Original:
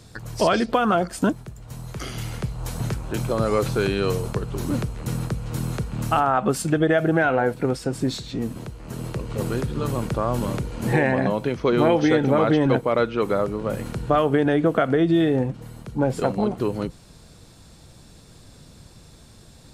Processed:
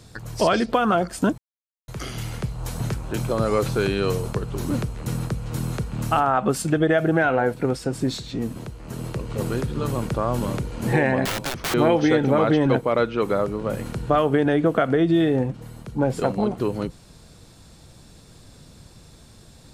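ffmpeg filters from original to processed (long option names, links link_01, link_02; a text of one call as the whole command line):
ffmpeg -i in.wav -filter_complex "[0:a]asettb=1/sr,asplit=3[link_01][link_02][link_03];[link_01]atrim=end=11.254[link_04];[link_02]atrim=start=11.25:end=11.74,asetpts=PTS-STARTPTS,afade=type=in:duration=0.004:curve=qsin,afade=type=out:start_time=0.486:duration=0.004:curve=qsin,aeval=exprs='(mod(11.2*val(0)+1,2)-1)/11.2':channel_layout=same[link_05];[link_03]atrim=start=11.736[link_06];[link_04][link_05]acrossfade=duration=0.004:curve1=hsin:curve2=qsin[link_07];[link_07][link_06]acrossfade=duration=0.004:curve1=qsin:curve2=hsin,asplit=3[link_08][link_09][link_10];[link_08]atrim=end=1.38,asetpts=PTS-STARTPTS,afade=type=out:start_time=1.376:duration=0.004:curve=hsin[link_11];[link_09]atrim=start=1.38:end=1.88,asetpts=PTS-STARTPTS,volume=0[link_12];[link_10]atrim=start=1.88,asetpts=PTS-STARTPTS,afade=type=in:duration=0.004:curve=hsin[link_13];[link_11][link_12][link_13]concat=n=3:v=0:a=1" out.wav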